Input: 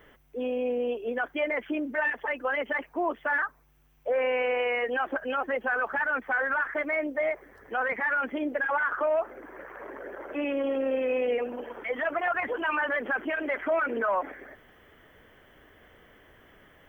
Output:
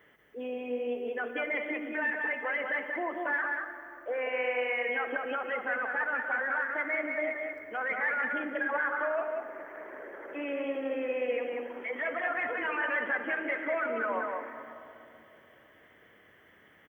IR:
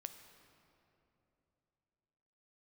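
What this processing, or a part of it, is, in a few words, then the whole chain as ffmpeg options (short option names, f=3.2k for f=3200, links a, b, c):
PA in a hall: -filter_complex "[0:a]highpass=110,equalizer=f=2k:t=o:w=0.54:g=6,aecho=1:1:185:0.631[a];[1:a]atrim=start_sample=2205[b];[a][b]afir=irnorm=-1:irlink=0,volume=-2dB"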